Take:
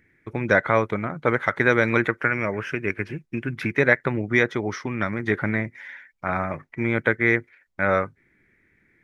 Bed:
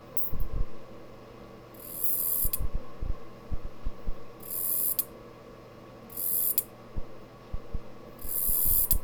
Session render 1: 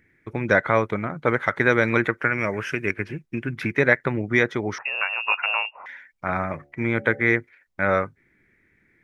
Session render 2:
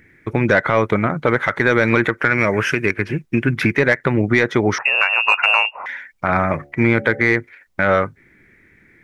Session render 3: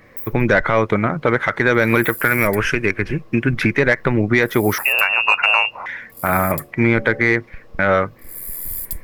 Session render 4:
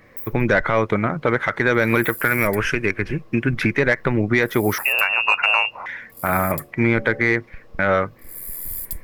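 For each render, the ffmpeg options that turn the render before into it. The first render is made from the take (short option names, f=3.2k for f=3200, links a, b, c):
-filter_complex "[0:a]asettb=1/sr,asplit=3[a][b][c];[a]atrim=end=2.384[d];[b]atrim=start=2.38:end=2.91,asetpts=PTS-STARTPTS,afade=t=in:d=0.004:c=qsin,afade=t=out:st=0.526:d=0.004:c=qsin,highshelf=f=4k:g=9.5[e];[c]atrim=start=2.906[f];[d][e]acrossfade=d=0.004:c1=hsin:c2=qsin[g];[g][f]acrossfade=d=0.004:c1=qsin:c2=hsin,asettb=1/sr,asplit=3[h][i][j];[h]atrim=end=4.784[k];[i]atrim=start=4.78:end=5.86,asetpts=PTS-STARTPTS,afade=t=in:d=0.004:c=qsin,afade=t=out:st=1.076:d=0.004:c=qsin,lowpass=f=2.5k:t=q:w=0.5098,lowpass=f=2.5k:t=q:w=0.6013,lowpass=f=2.5k:t=q:w=0.9,lowpass=f=2.5k:t=q:w=2.563,afreqshift=-2900[l];[j]atrim=start=5.856[m];[k][l]acrossfade=d=0.004:c1=hsin:c2=qsin[n];[n][m]acrossfade=d=0.004:c1=qsin:c2=hsin,asettb=1/sr,asplit=3[o][p][q];[o]atrim=end=6.534[r];[p]atrim=start=6.53:end=7.36,asetpts=PTS-STARTPTS,afade=t=in:d=0.004:c=qsin,afade=t=out:st=0.826:d=0.004:c=qsin,bandreject=f=71.36:t=h:w=4,bandreject=f=142.72:t=h:w=4,bandreject=f=214.08:t=h:w=4,bandreject=f=285.44:t=h:w=4,bandreject=f=356.8:t=h:w=4,bandreject=f=428.16:t=h:w=4,bandreject=f=499.52:t=h:w=4,bandreject=f=570.88:t=h:w=4,bandreject=f=642.24:t=h:w=4,bandreject=f=713.6:t=h:w=4,bandreject=f=784.96:t=h:w=4[s];[q]atrim=start=7.356[t];[r][s]acrossfade=d=0.004:c1=hsin:c2=qsin[u];[u][t]acrossfade=d=0.004:c1=qsin:c2=hsin"
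-filter_complex "[0:a]asplit=2[a][b];[b]acontrast=78,volume=1dB[c];[a][c]amix=inputs=2:normalize=0,alimiter=limit=-4dB:level=0:latency=1:release=167"
-filter_complex "[1:a]volume=-3dB[a];[0:a][a]amix=inputs=2:normalize=0"
-af "volume=-2.5dB"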